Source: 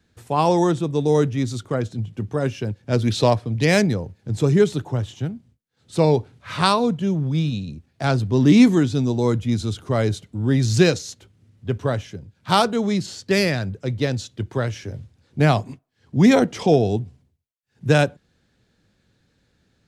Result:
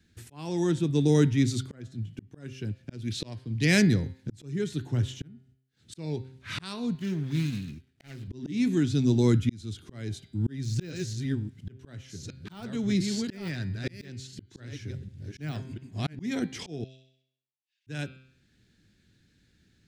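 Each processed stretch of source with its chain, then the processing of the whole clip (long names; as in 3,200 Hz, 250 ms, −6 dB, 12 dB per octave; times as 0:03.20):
0:06.95–0:08.28: running median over 41 samples + tilt shelving filter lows −7.5 dB, about 690 Hz + linearly interpolated sample-rate reduction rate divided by 2×
0:10.22–0:16.22: delay that plays each chunk backwards 695 ms, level −7.5 dB + de-essing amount 65%
0:16.84–0:17.87: four-pole ladder high-pass 2,300 Hz, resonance 40% + high-frequency loss of the air 98 metres + flutter between parallel walls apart 11.3 metres, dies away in 0.51 s
whole clip: flat-topped bell 760 Hz −11 dB; hum removal 130.8 Hz, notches 38; volume swells 701 ms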